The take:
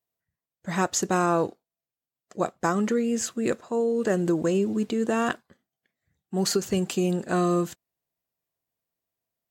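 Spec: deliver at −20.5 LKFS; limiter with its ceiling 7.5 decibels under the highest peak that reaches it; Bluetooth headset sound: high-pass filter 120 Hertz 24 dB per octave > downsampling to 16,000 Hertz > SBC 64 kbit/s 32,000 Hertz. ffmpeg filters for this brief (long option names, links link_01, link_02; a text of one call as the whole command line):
ffmpeg -i in.wav -af "alimiter=limit=-18.5dB:level=0:latency=1,highpass=frequency=120:width=0.5412,highpass=frequency=120:width=1.3066,aresample=16000,aresample=44100,volume=7.5dB" -ar 32000 -c:a sbc -b:a 64k out.sbc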